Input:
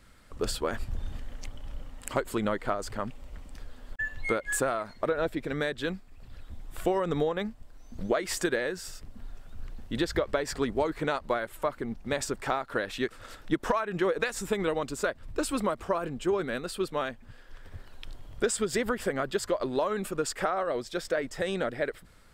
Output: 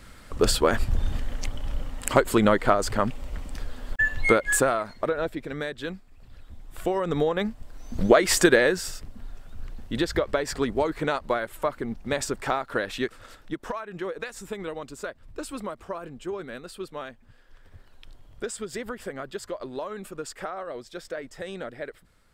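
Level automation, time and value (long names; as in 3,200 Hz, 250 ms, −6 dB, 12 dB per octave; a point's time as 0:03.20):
0:04.26 +9.5 dB
0:05.48 −1.5 dB
0:06.66 −1.5 dB
0:07.97 +10.5 dB
0:08.67 +10.5 dB
0:09.17 +3 dB
0:12.97 +3 dB
0:13.57 −5.5 dB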